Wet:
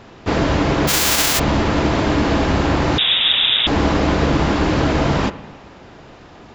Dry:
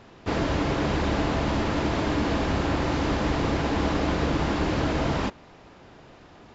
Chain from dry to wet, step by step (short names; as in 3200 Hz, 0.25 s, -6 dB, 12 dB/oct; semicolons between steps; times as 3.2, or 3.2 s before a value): 0.87–1.38 spectral whitening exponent 0.1; spring tank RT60 1.3 s, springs 49/55 ms, chirp 65 ms, DRR 14.5 dB; 2.98–3.67 inverted band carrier 3700 Hz; gain +8 dB